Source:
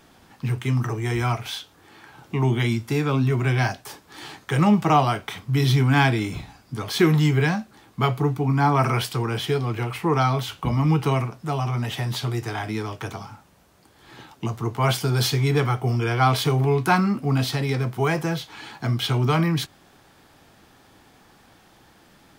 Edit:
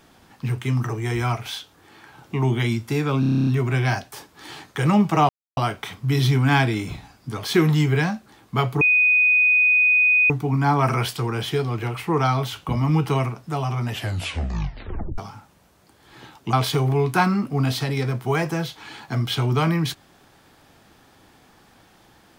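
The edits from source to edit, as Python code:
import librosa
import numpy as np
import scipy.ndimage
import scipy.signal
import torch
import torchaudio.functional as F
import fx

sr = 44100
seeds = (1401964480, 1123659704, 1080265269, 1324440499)

y = fx.edit(x, sr, fx.stutter(start_s=3.2, slice_s=0.03, count=10),
    fx.insert_silence(at_s=5.02, length_s=0.28),
    fx.insert_tone(at_s=8.26, length_s=1.49, hz=2490.0, db=-13.5),
    fx.tape_stop(start_s=11.85, length_s=1.29),
    fx.cut(start_s=14.49, length_s=1.76), tone=tone)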